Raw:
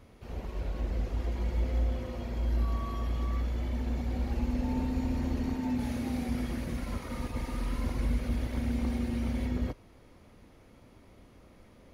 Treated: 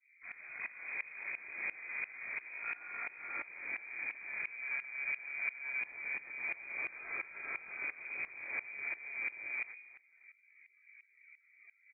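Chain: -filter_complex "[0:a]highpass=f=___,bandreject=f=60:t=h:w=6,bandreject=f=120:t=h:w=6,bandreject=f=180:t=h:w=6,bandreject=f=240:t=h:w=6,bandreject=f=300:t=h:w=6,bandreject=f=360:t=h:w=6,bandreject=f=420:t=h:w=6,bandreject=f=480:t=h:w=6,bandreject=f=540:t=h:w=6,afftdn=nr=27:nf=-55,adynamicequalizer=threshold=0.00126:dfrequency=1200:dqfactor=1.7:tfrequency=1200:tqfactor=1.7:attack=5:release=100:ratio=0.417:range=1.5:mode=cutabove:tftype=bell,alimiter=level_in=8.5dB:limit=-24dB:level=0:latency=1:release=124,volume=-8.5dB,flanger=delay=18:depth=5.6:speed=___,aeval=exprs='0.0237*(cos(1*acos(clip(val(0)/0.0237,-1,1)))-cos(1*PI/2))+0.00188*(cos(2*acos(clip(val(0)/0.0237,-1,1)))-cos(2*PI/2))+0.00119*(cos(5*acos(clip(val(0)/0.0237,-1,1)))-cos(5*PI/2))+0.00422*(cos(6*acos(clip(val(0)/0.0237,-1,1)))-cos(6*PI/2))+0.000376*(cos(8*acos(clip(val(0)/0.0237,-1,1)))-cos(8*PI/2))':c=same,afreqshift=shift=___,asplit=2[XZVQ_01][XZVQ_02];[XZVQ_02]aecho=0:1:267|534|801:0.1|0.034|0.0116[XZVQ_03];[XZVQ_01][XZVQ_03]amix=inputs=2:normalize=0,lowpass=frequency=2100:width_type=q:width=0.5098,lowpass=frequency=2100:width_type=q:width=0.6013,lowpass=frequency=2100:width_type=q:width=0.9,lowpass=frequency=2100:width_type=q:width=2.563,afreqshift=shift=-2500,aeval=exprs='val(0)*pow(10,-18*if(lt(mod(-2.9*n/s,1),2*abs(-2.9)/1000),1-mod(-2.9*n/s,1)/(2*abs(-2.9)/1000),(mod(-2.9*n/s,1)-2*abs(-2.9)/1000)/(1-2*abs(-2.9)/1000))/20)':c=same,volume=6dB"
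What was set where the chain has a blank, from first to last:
160, 2.9, -60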